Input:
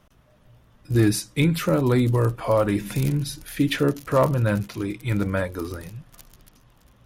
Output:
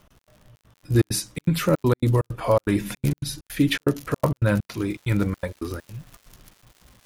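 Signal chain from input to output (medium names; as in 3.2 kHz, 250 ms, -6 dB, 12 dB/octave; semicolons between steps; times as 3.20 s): trance gate "xx.xxx.x.xx.x" 163 bpm -60 dB; crackle 53 per s -44 dBFS, from 4.76 s 430 per s; trim +1.5 dB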